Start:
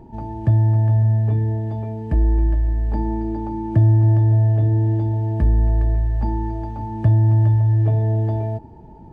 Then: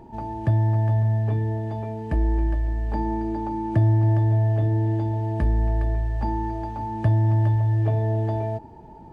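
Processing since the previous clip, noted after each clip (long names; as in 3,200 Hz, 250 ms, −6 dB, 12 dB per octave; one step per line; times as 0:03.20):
low-shelf EQ 400 Hz −9 dB
level +3.5 dB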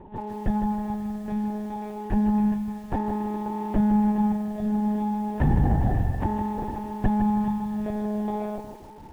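one-pitch LPC vocoder at 8 kHz 210 Hz
harmonic generator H 8 −34 dB, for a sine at −9.5 dBFS
feedback echo at a low word length 158 ms, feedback 35%, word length 8 bits, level −8.5 dB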